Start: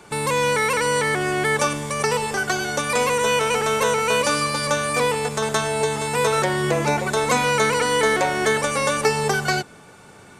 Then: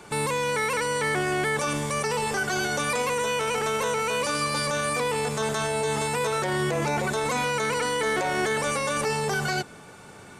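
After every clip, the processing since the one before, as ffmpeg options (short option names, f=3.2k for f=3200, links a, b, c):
-af "alimiter=limit=-18dB:level=0:latency=1:release=18"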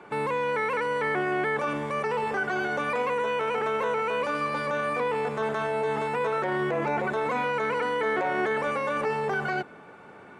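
-filter_complex "[0:a]acrossover=split=190 2600:gain=0.251 1 0.0708[a][b][c];[a][b][c]amix=inputs=3:normalize=0"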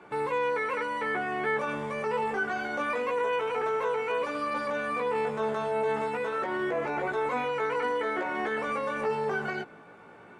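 -af "flanger=delay=16:depth=2.4:speed=0.27"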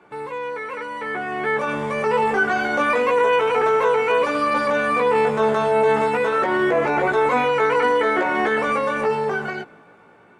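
-af "dynaudnorm=f=350:g=9:m=12dB,volume=-1dB"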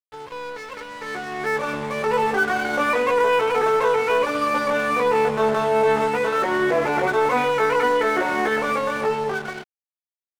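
-af "aeval=exprs='sgn(val(0))*max(abs(val(0))-0.02,0)':c=same"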